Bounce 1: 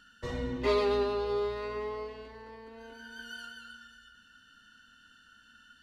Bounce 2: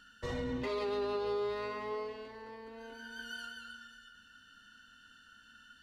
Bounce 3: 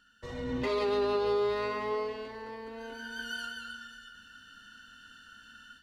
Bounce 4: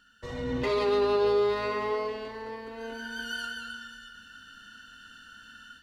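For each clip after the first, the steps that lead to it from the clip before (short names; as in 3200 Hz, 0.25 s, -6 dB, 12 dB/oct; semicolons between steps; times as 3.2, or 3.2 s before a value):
notches 60/120/180/240/300/360/420 Hz; limiter -28 dBFS, peak gain reduction 10.5 dB
AGC gain up to 12 dB; gain -6 dB
reverb RT60 1.0 s, pre-delay 48 ms, DRR 12 dB; gain +3 dB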